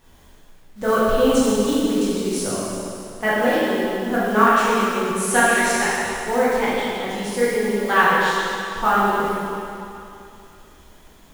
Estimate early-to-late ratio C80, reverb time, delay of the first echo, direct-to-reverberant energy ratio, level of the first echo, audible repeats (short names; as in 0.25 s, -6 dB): -2.0 dB, 2.7 s, none, -10.0 dB, none, none